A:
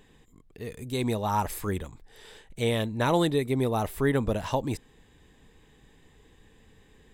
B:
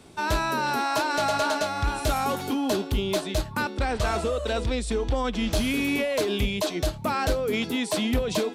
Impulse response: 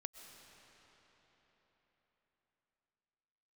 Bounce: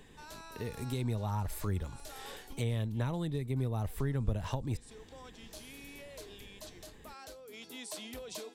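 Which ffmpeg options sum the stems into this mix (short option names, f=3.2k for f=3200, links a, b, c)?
-filter_complex "[0:a]volume=1.5dB[a];[1:a]bass=f=250:g=-10,treble=f=4k:g=9,volume=-17dB,afade=t=in:st=7.49:d=0.31:silence=0.446684[b];[a][b]amix=inputs=2:normalize=0,acrossover=split=140[c][d];[d]acompressor=threshold=-37dB:ratio=10[e];[c][e]amix=inputs=2:normalize=0"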